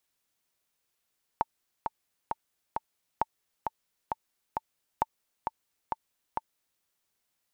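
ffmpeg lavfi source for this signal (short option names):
-f lavfi -i "aevalsrc='pow(10,(-11.5-5*gte(mod(t,4*60/133),60/133))/20)*sin(2*PI*894*mod(t,60/133))*exp(-6.91*mod(t,60/133)/0.03)':d=5.41:s=44100"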